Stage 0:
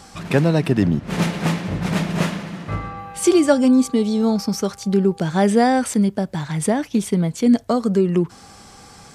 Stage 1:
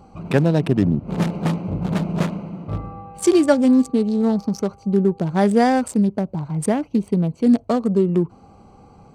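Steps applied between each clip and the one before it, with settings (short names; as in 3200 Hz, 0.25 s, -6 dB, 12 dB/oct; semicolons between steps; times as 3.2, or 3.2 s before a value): Wiener smoothing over 25 samples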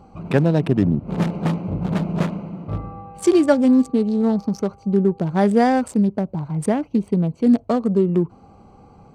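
high shelf 4200 Hz -6 dB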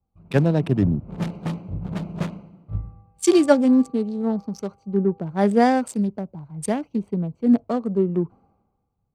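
three-band expander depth 100%; gain -3.5 dB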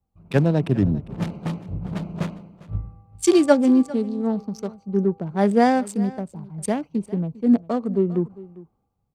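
echo 0.401 s -19.5 dB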